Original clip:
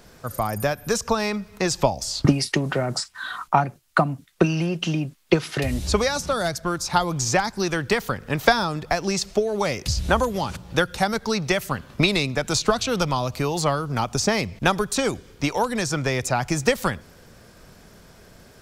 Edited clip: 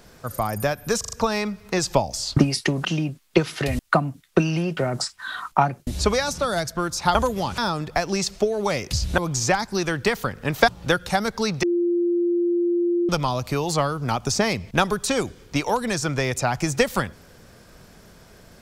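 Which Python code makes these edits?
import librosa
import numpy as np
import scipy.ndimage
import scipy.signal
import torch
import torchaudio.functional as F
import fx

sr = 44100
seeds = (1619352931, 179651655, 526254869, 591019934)

y = fx.edit(x, sr, fx.stutter(start_s=1.0, slice_s=0.04, count=4),
    fx.swap(start_s=2.73, length_s=1.1, other_s=4.81, other_length_s=0.94),
    fx.swap(start_s=7.03, length_s=1.5, other_s=10.13, other_length_s=0.43),
    fx.bleep(start_s=11.51, length_s=1.46, hz=347.0, db=-18.0), tone=tone)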